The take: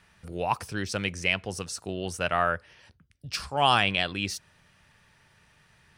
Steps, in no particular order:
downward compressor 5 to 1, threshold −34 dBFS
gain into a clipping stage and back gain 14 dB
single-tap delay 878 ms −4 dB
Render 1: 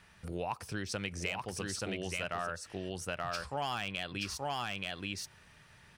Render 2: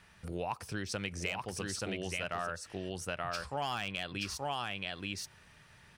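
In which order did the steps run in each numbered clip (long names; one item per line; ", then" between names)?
gain into a clipping stage and back, then single-tap delay, then downward compressor
single-tap delay, then gain into a clipping stage and back, then downward compressor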